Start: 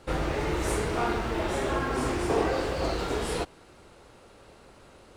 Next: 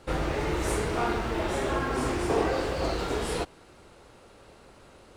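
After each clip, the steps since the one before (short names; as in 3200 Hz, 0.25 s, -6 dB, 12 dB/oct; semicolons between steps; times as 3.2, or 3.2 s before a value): nothing audible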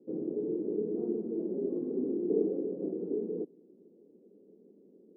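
Chebyshev band-pass 190–440 Hz, order 3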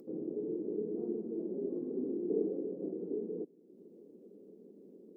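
upward compressor, threshold -42 dBFS; gain -4 dB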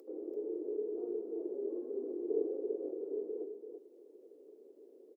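inverse Chebyshev high-pass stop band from 180 Hz, stop band 40 dB; on a send: echo 0.336 s -7.5 dB; on the sum: gain +1 dB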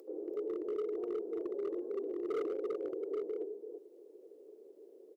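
bell 260 Hz -10 dB 0.33 oct; hard clip -34 dBFS, distortion -13 dB; gain +2.5 dB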